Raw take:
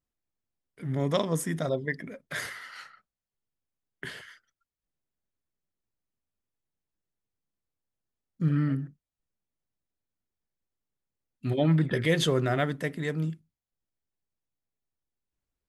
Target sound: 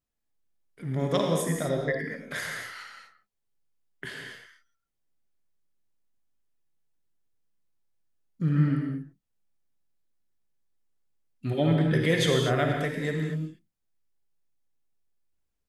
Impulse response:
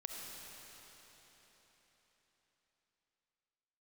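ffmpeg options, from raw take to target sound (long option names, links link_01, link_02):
-filter_complex "[1:a]atrim=start_sample=2205,afade=type=out:start_time=0.38:duration=0.01,atrim=end_sample=17199,asetrate=57330,aresample=44100[link_01];[0:a][link_01]afir=irnorm=-1:irlink=0,volume=6.5dB"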